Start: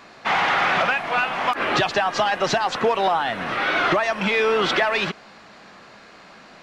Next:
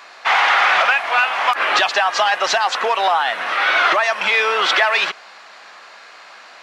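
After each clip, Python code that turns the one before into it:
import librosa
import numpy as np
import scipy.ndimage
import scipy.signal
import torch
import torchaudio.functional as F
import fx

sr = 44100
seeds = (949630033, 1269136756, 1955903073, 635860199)

y = scipy.signal.sosfilt(scipy.signal.butter(2, 760.0, 'highpass', fs=sr, output='sos'), x)
y = y * 10.0 ** (6.5 / 20.0)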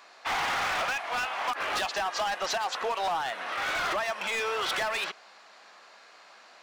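y = np.clip(x, -10.0 ** (-13.5 / 20.0), 10.0 ** (-13.5 / 20.0))
y = fx.peak_eq(y, sr, hz=1900.0, db=-5.0, octaves=2.4)
y = y * 10.0 ** (-8.5 / 20.0)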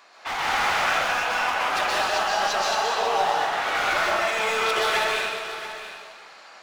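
y = x + 10.0 ** (-12.5 / 20.0) * np.pad(x, (int(684 * sr / 1000.0), 0))[:len(x)]
y = fx.rev_plate(y, sr, seeds[0], rt60_s=1.7, hf_ratio=0.85, predelay_ms=115, drr_db=-5.5)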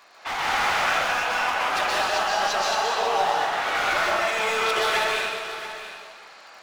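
y = fx.dmg_crackle(x, sr, seeds[1], per_s=53.0, level_db=-42.0)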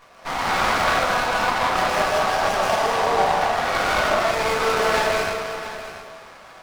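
y = fx.room_shoebox(x, sr, seeds[2], volume_m3=130.0, walls='furnished', distance_m=1.8)
y = fx.running_max(y, sr, window=9)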